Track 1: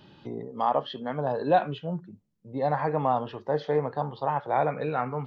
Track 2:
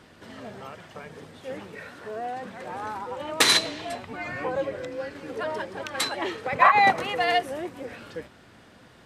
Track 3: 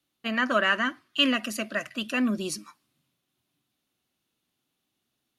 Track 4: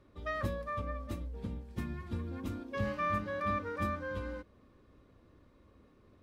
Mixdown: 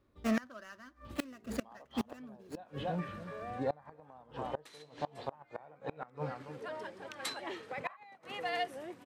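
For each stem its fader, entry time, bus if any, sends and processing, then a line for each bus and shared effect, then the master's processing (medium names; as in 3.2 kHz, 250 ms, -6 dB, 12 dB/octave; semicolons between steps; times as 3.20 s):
-5.5 dB, 1.05 s, no send, echo send -12 dB, none
-12.0 dB, 1.25 s, no send, no echo send, high-pass 110 Hz 12 dB/octave
+1.0 dB, 0.00 s, no send, no echo send, median filter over 15 samples
-9.0 dB, 0.00 s, no send, echo send -4.5 dB, compression, threshold -36 dBFS, peak gain reduction 7.5 dB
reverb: none
echo: delay 283 ms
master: inverted gate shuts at -22 dBFS, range -26 dB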